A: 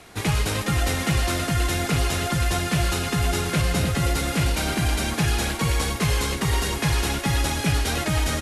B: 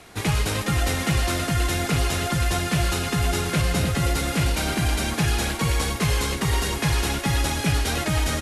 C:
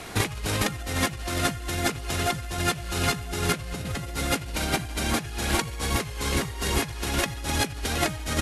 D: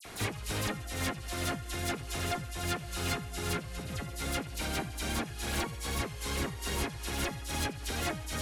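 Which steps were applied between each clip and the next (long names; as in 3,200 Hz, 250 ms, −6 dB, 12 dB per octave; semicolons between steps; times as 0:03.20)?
no processing that can be heard
compressor whose output falls as the input rises −28 dBFS, ratio −0.5; level +1.5 dB
hard clipping −21 dBFS, distortion −13 dB; all-pass dispersion lows, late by 52 ms, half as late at 2,800 Hz; level −6.5 dB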